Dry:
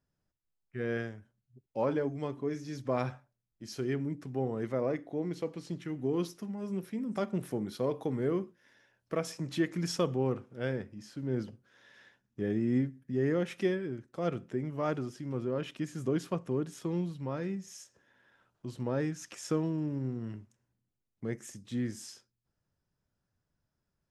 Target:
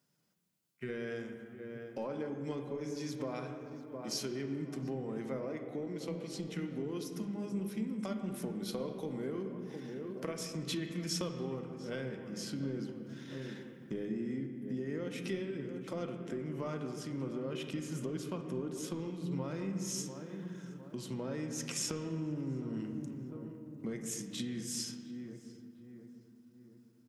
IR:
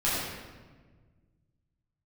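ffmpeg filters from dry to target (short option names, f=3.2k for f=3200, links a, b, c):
-filter_complex "[0:a]highpass=f=170:w=0.5412,highpass=f=170:w=1.3066,asplit=2[a][b];[b]adelay=624,lowpass=f=1.6k:p=1,volume=-17dB,asplit=2[c][d];[d]adelay=624,lowpass=f=1.6k:p=1,volume=0.5,asplit=2[e][f];[f]adelay=624,lowpass=f=1.6k:p=1,volume=0.5,asplit=2[g][h];[h]adelay=624,lowpass=f=1.6k:p=1,volume=0.5[i];[a][c][e][g][i]amix=inputs=5:normalize=0,acompressor=threshold=-44dB:ratio=5,equalizer=f=640:w=0.31:g=-10,atempo=0.89,bandreject=f=1.7k:w=14,asplit=2[j][k];[1:a]atrim=start_sample=2205,asetrate=27342,aresample=44100,lowpass=3.3k[l];[k][l]afir=irnorm=-1:irlink=0,volume=-18.5dB[m];[j][m]amix=inputs=2:normalize=0,volume=12.5dB"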